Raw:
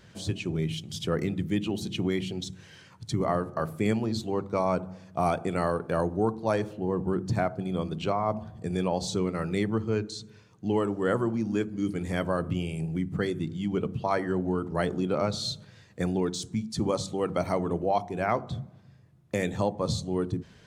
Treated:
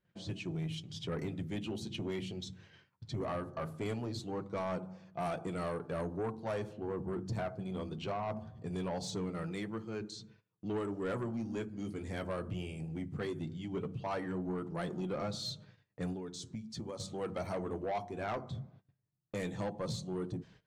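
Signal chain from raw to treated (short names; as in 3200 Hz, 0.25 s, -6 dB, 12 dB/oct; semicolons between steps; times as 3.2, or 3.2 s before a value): gate -50 dBFS, range -21 dB; low-pass opened by the level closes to 3000 Hz, open at -24 dBFS; 9.52–10.01 low shelf 340 Hz -7 dB; 16.12–17 compressor 10:1, threshold -31 dBFS, peak gain reduction 9.5 dB; flange 0.2 Hz, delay 5.5 ms, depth 3.7 ms, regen -45%; soft clip -27.5 dBFS, distortion -12 dB; gain -3 dB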